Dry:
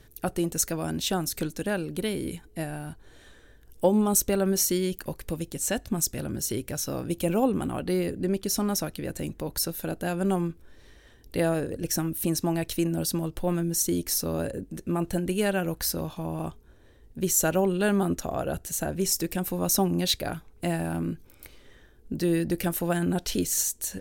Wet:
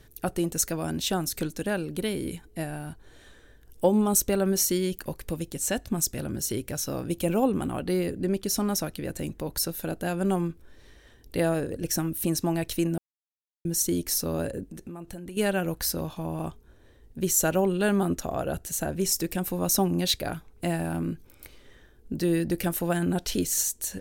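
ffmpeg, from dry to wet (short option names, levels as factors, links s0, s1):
-filter_complex "[0:a]asettb=1/sr,asplit=3[s0][s1][s2];[s0]atrim=end=14.664[s3];[s1]atrim=start=14.66:end=15.37,asetpts=PTS-STARTPTS,afade=t=in:d=0.004:c=qsin,afade=t=out:st=0.706:d=0.004:c=qsin,acompressor=threshold=0.0158:ratio=6:attack=3.2:release=140:knee=1:detection=peak[s4];[s2]atrim=start=15.366[s5];[s3][s4]acrossfade=d=0.004:c1=hsin:c2=qsin[s6];[s6][s5]acrossfade=d=0.004:c1=qsin:c2=hsin,asplit=3[s7][s8][s9];[s7]atrim=end=12.98,asetpts=PTS-STARTPTS,afade=t=out:st=12.976:d=0.004:c=hsin[s10];[s8]atrim=start=12.98:end=13.65,asetpts=PTS-STARTPTS,volume=0[s11];[s9]atrim=start=13.65,asetpts=PTS-STARTPTS,afade=t=in:d=0.004:c=hsin[s12];[s10][s11][s12]concat=n=3:v=0:a=1"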